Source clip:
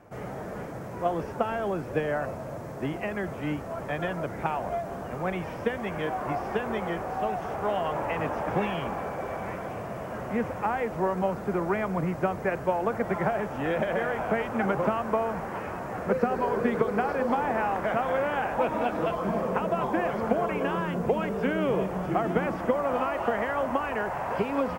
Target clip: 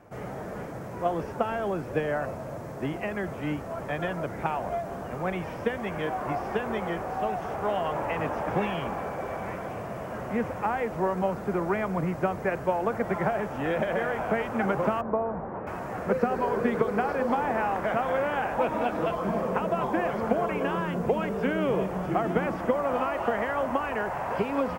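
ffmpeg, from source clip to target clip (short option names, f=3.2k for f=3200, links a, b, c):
-filter_complex "[0:a]asettb=1/sr,asplit=3[a][b][c];[a]atrim=end=15.014[d];[b]atrim=start=15.01:end=15.67,asetpts=PTS-STARTPTS,afade=t=in:d=0.004:c=qsin,afade=t=out:st=0.656:d=0.004:c=qsin,lowpass=1k[e];[c]atrim=start=15.666[f];[d][e]acrossfade=d=0.004:c1=hsin:c2=qsin[g];[g][f]acrossfade=d=0.004:c1=qsin:c2=hsin"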